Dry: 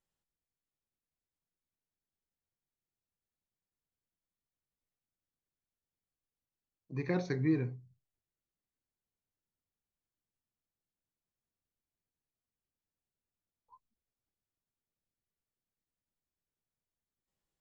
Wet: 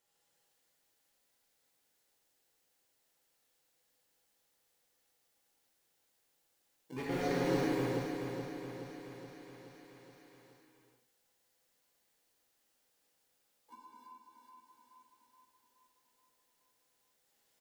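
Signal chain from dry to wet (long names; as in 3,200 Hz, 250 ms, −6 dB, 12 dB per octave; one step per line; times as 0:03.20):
high-pass filter 290 Hz 12 dB per octave
brickwall limiter −30.5 dBFS, peak gain reduction 7 dB
in parallel at −7 dB: decimation without filtering 35×
on the sum: hollow resonant body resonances 500/820 Hz, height 8 dB, ringing for 45 ms
gain into a clipping stage and back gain 35.5 dB
on a send: repeating echo 424 ms, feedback 57%, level −6.5 dB
on the sum: reverb whose tail is shaped and stops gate 430 ms flat, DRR −6.5 dB
one half of a high-frequency compander encoder only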